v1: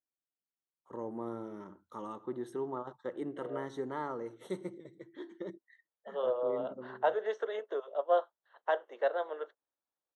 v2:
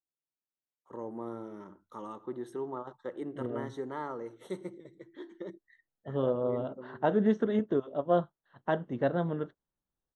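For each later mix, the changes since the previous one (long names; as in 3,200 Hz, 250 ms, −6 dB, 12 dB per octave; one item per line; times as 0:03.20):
second voice: remove Butterworth high-pass 460 Hz 36 dB per octave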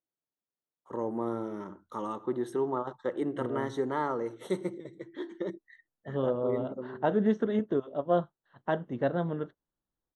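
first voice +7.0 dB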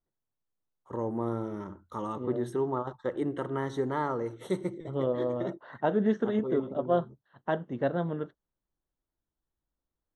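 first voice: remove high-pass filter 180 Hz 12 dB per octave
second voice: entry −1.20 s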